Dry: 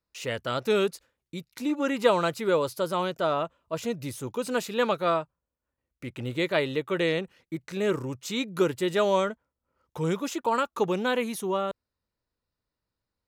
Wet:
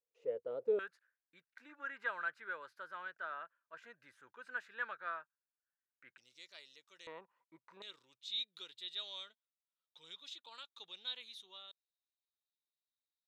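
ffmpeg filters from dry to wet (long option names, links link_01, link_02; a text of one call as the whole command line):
ffmpeg -i in.wav -af "asetnsamples=nb_out_samples=441:pad=0,asendcmd='0.79 bandpass f 1600;6.18 bandpass f 5500;7.07 bandpass f 1000;7.82 bandpass f 3700',bandpass=frequency=480:width_type=q:width=10:csg=0" out.wav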